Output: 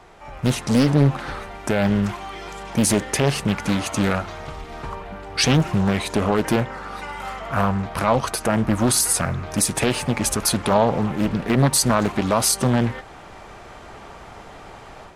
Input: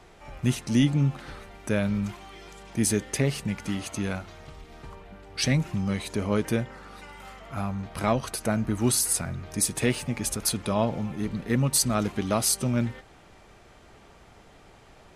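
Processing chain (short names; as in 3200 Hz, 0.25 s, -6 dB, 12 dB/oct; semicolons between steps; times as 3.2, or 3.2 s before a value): bell 980 Hz +6.5 dB 1.7 oct; AGC gain up to 8 dB; limiter -8.5 dBFS, peak gain reduction 6.5 dB; Doppler distortion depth 0.8 ms; gain +1.5 dB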